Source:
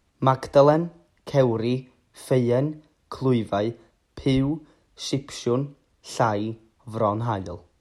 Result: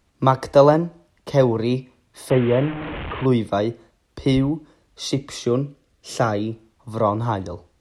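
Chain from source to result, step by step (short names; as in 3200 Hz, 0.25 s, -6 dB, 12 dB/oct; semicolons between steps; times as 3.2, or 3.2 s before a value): 2.3–3.26 delta modulation 16 kbps, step -26.5 dBFS; 5.45–6.52 bell 930 Hz -14 dB 0.22 oct; gain +3 dB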